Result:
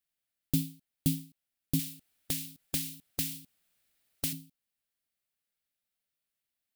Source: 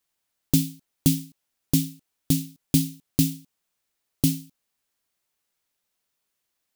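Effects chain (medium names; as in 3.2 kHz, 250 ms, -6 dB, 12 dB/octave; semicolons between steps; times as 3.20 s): fifteen-band graphic EQ 400 Hz -6 dB, 1 kHz -9 dB, 6.3 kHz -6 dB; 1.79–4.33 s: spectrum-flattening compressor 2:1; trim -7.5 dB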